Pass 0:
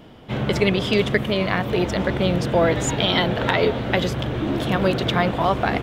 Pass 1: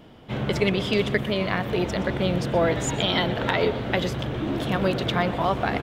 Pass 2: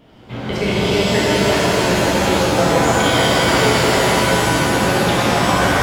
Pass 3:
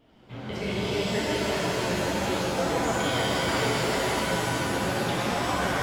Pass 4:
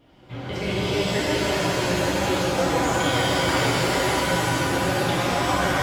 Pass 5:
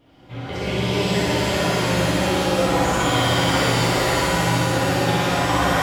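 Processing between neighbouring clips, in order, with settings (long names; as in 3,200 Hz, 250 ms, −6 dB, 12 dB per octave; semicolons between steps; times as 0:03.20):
single-tap delay 122 ms −17 dB; level −3.5 dB
reverb with rising layers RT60 3.8 s, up +7 semitones, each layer −2 dB, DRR −8 dB; level −2 dB
flanger 0.73 Hz, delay 2.3 ms, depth 9.3 ms, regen −46%; level −7.5 dB
notch comb filter 220 Hz; level +5.5 dB
flutter between parallel walls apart 10.1 metres, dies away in 1 s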